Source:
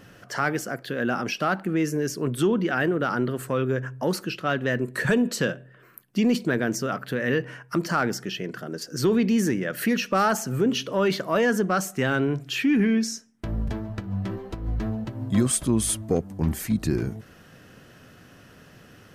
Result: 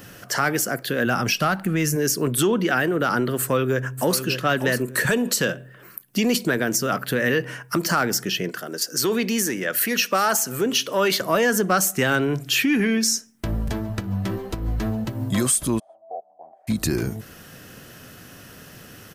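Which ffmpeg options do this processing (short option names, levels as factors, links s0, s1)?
-filter_complex "[0:a]asplit=3[s0][s1][s2];[s0]afade=t=out:st=1.05:d=0.02[s3];[s1]asubboost=boost=9:cutoff=140,afade=t=in:st=1.05:d=0.02,afade=t=out:st=1.95:d=0.02[s4];[s2]afade=t=in:st=1.95:d=0.02[s5];[s3][s4][s5]amix=inputs=3:normalize=0,asplit=2[s6][s7];[s7]afade=t=in:st=3.38:d=0.01,afade=t=out:st=4.23:d=0.01,aecho=0:1:590|1180|1770:0.316228|0.0632456|0.0126491[s8];[s6][s8]amix=inputs=2:normalize=0,asettb=1/sr,asplit=3[s9][s10][s11];[s9]atrim=end=8.494[s12];[s10]atrim=start=8.49:end=11.21,asetpts=PTS-STARTPTS,afade=t=in:d=0.004:c=qsin,afade=t=out:st=2.716:d=0.004:c=qsin,highpass=f=470:p=1[s13];[s11]atrim=start=11.206[s14];[s12][s13]acrossfade=d=0.004:c1=hsin:c2=qsin[s15];[s15][s14]acrossfade=d=0.004:c1=qsin:c2=hsin,asplit=3[s16][s17][s18];[s16]afade=t=out:st=15.78:d=0.02[s19];[s17]asuperpass=centerf=690:order=4:qfactor=4.7,afade=t=in:st=15.78:d=0.02,afade=t=out:st=16.67:d=0.02[s20];[s18]afade=t=in:st=16.67:d=0.02[s21];[s19][s20][s21]amix=inputs=3:normalize=0,aemphasis=mode=production:type=50kf,acrossover=split=420[s22][s23];[s22]acompressor=threshold=0.0501:ratio=6[s24];[s24][s23]amix=inputs=2:normalize=0,alimiter=limit=0.178:level=0:latency=1:release=164,volume=1.78"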